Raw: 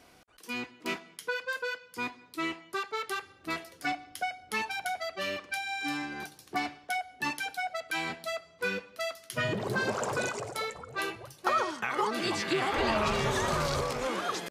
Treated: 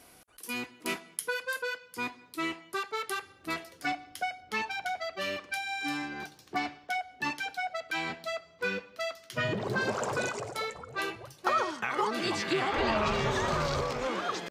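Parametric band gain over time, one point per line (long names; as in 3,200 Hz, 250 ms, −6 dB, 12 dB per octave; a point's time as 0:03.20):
parametric band 11,000 Hz 0.71 octaves
+13.5 dB
from 0:01.62 +4.5 dB
from 0:03.54 −2 dB
from 0:04.41 −12.5 dB
from 0:05.17 −1 dB
from 0:06.08 −11 dB
from 0:09.81 −4.5 dB
from 0:12.62 −14.5 dB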